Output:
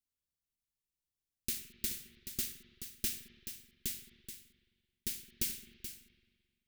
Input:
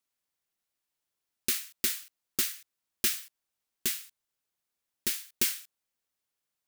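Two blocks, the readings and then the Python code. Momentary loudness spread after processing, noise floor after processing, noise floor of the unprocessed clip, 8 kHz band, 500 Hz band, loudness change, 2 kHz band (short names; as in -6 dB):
12 LU, under -85 dBFS, under -85 dBFS, -7.5 dB, -9.0 dB, -9.0 dB, -12.0 dB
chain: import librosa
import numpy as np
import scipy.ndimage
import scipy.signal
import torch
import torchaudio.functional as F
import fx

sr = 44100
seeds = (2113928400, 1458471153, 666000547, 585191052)

p1 = fx.tone_stack(x, sr, knobs='10-0-1')
p2 = p1 + fx.echo_single(p1, sr, ms=429, db=-10.0, dry=0)
p3 = fx.rev_spring(p2, sr, rt60_s=1.7, pass_ms=(43, 55), chirp_ms=60, drr_db=9.5)
y = p3 * 10.0 ** (12.5 / 20.0)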